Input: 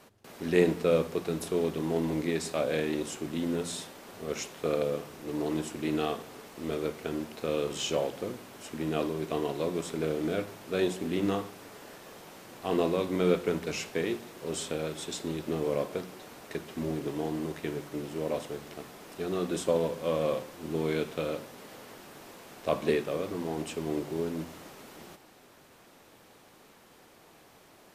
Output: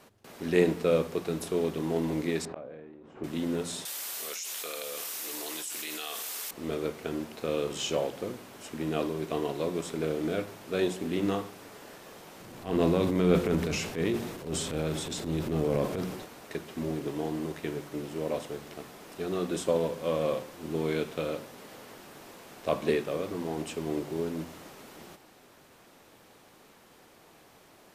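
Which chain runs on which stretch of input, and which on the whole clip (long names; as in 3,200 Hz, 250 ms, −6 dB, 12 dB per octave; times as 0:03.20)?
0:02.45–0:03.24: low-pass filter 1,400 Hz + gate with flip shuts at −24 dBFS, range −26 dB + level that may fall only so fast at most 23 dB per second
0:03.85–0:06.51: high-pass filter 180 Hz 6 dB per octave + first difference + envelope flattener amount 100%
0:12.40–0:16.26: low-shelf EQ 240 Hz +10.5 dB + transient designer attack −10 dB, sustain +6 dB
whole clip: no processing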